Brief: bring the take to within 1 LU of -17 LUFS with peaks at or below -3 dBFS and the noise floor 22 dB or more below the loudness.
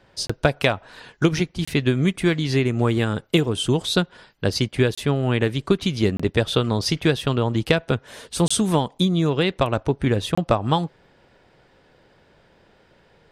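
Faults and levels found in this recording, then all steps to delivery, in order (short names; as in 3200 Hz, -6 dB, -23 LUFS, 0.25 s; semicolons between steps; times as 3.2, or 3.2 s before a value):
dropouts 6; longest dropout 25 ms; loudness -22.0 LUFS; peak -5.0 dBFS; loudness target -17.0 LUFS
-> interpolate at 0.27/1.65/4.95/6.17/8.48/10.35, 25 ms; gain +5 dB; limiter -3 dBFS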